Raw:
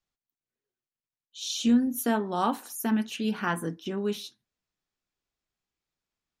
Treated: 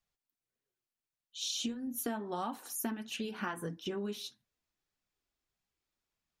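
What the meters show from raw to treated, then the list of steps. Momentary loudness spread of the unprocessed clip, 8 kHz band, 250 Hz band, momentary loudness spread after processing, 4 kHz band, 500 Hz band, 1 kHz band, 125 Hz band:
10 LU, −3.5 dB, −12.5 dB, 5 LU, −3.5 dB, −8.5 dB, −10.0 dB, −9.5 dB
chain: downward compressor 12 to 1, threshold −32 dBFS, peak gain reduction 15 dB
flanger 1.6 Hz, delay 1 ms, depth 2.6 ms, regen −48%
level +3.5 dB

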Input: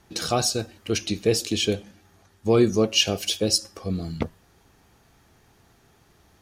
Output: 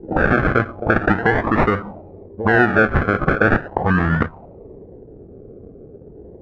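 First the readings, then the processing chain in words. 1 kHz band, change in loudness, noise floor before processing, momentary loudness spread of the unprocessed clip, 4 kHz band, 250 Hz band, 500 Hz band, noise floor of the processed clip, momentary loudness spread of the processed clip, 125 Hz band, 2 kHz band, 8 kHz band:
+14.5 dB, +6.0 dB, −60 dBFS, 12 LU, −15.5 dB, +6.5 dB, +4.5 dB, −42 dBFS, 7 LU, +9.0 dB, +18.0 dB, below −25 dB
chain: downward compressor 10 to 1, threshold −26 dBFS, peak gain reduction 13 dB
echo ahead of the sound 76 ms −17 dB
sample-and-hold swept by an LFO 37×, swing 60% 0.4 Hz
boost into a limiter +22.5 dB
envelope-controlled low-pass 400–1,600 Hz up, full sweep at −7.5 dBFS
level −7.5 dB

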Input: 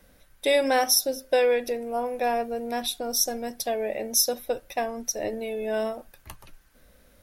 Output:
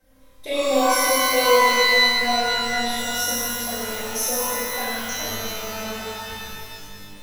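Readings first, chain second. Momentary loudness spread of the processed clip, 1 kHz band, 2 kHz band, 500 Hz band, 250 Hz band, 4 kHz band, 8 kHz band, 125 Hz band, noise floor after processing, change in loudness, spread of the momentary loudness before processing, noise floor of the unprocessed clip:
17 LU, +7.5 dB, +12.5 dB, +1.5 dB, +3.5 dB, +8.5 dB, +3.0 dB, can't be measured, −46 dBFS, +5.5 dB, 9 LU, −58 dBFS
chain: flutter between parallel walls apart 5.2 metres, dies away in 0.3 s
flanger swept by the level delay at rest 3.9 ms, full sweep at −19 dBFS
reverb with rising layers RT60 2.3 s, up +12 semitones, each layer −2 dB, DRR −9 dB
level −7 dB

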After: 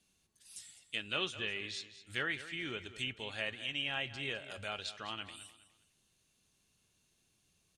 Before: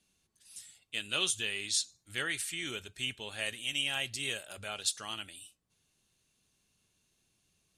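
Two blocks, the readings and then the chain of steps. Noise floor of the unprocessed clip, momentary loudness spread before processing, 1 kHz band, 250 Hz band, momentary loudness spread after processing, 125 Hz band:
−77 dBFS, 15 LU, 0.0 dB, 0.0 dB, 15 LU, 0.0 dB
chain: treble cut that deepens with the level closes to 2,500 Hz, closed at −34 dBFS
repeating echo 206 ms, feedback 30%, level −14 dB

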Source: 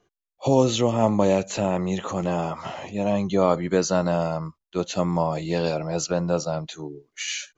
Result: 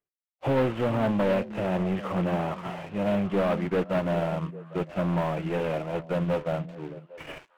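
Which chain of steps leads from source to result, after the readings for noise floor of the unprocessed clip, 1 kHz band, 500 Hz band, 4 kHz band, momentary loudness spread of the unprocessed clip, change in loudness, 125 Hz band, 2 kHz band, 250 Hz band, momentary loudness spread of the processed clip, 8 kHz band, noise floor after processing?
−83 dBFS, −4.5 dB, −4.0 dB, −10.5 dB, 11 LU, −3.5 dB, −2.5 dB, −1.0 dB, −3.0 dB, 9 LU, can't be measured, below −85 dBFS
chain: variable-slope delta modulation 16 kbit/s
leveller curve on the samples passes 3
on a send: echo through a band-pass that steps 402 ms, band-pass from 190 Hz, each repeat 1.4 octaves, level −8 dB
on the sum: expander for the loud parts 1.5 to 1, over −37 dBFS
level −9 dB

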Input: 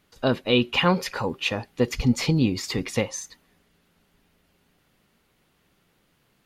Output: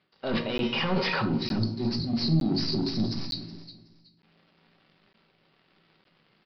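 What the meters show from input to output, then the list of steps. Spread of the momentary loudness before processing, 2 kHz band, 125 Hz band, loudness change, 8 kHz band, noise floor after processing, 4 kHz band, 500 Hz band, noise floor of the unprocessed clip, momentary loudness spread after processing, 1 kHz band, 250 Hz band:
8 LU, −5.0 dB, −2.0 dB, −3.5 dB, below −15 dB, −67 dBFS, −2.0 dB, −6.5 dB, −67 dBFS, 9 LU, −5.0 dB, −2.5 dB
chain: stylus tracing distortion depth 0.13 ms
hum removal 234.7 Hz, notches 30
time-frequency box erased 0:01.21–0:04.18, 390–3,800 Hz
Bessel high-pass filter 150 Hz, order 4
transient designer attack −6 dB, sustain +10 dB
reversed playback
downward compressor 10 to 1, threshold −36 dBFS, peak gain reduction 19.5 dB
reversed playback
leveller curve on the samples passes 3
double-tracking delay 18 ms −13.5 dB
repeating echo 372 ms, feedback 25%, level −16 dB
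rectangular room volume 570 cubic metres, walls furnished, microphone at 1.1 metres
downsampling to 11,025 Hz
regular buffer underruns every 0.91 s, samples 512, zero, from 0:00.58
level +2 dB

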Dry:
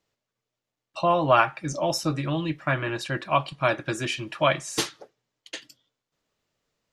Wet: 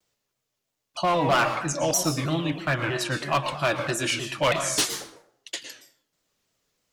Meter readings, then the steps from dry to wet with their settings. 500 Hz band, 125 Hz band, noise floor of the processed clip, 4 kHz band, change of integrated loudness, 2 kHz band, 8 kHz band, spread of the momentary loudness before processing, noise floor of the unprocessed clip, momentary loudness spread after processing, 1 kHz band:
−1.0 dB, 0.0 dB, −81 dBFS, +3.5 dB, +0.5 dB, +1.5 dB, +8.0 dB, 15 LU, below −85 dBFS, 14 LU, −1.0 dB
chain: high-shelf EQ 4,600 Hz +10.5 dB
hard clipping −17 dBFS, distortion −11 dB
dense smooth reverb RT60 0.64 s, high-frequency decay 0.65×, pre-delay 100 ms, DRR 6.5 dB
pitch modulation by a square or saw wave saw down 3.1 Hz, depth 160 cents

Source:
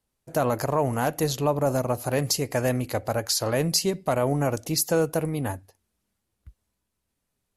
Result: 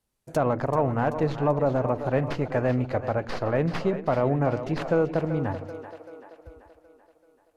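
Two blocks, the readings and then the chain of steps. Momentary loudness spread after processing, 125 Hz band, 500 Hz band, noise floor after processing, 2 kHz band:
7 LU, +0.5 dB, +0.5 dB, −66 dBFS, −1.0 dB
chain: stylus tracing distortion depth 0.19 ms
treble cut that deepens with the level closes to 2,000 Hz, closed at −24.5 dBFS
on a send: echo with a time of its own for lows and highs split 320 Hz, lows 94 ms, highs 385 ms, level −10.5 dB

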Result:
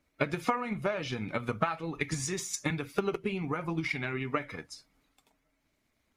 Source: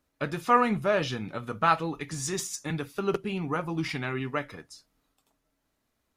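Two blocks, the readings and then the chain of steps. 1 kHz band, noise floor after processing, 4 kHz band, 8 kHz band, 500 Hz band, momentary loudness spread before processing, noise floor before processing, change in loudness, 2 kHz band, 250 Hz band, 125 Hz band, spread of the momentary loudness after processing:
−7.5 dB, −77 dBFS, −3.5 dB, −1.5 dB, −4.0 dB, 11 LU, −78 dBFS, −4.5 dB, −2.0 dB, −3.0 dB, −2.0 dB, 4 LU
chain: spectral magnitudes quantised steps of 15 dB
parametric band 2,200 Hz +9.5 dB 0.22 octaves
downward compressor 6 to 1, threshold −32 dBFS, peak gain reduction 15.5 dB
transient designer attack +7 dB, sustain +2 dB
high-shelf EQ 12,000 Hz −7 dB
level +1 dB

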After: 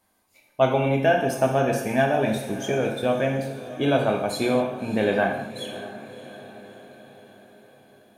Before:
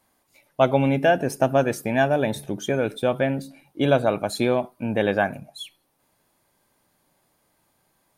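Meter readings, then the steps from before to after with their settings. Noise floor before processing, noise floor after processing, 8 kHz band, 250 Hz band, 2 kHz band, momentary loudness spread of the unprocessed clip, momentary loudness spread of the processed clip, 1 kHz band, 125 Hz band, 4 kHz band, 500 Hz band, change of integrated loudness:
−69 dBFS, −63 dBFS, 0.0 dB, −0.5 dB, −0.5 dB, 15 LU, 18 LU, 0.0 dB, −1.0 dB, 0.0 dB, −0.5 dB, −1.0 dB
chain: feedback delay with all-pass diffusion 625 ms, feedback 55%, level −14.5 dB
reverb whose tail is shaped and stops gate 280 ms falling, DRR 1 dB
level −3 dB

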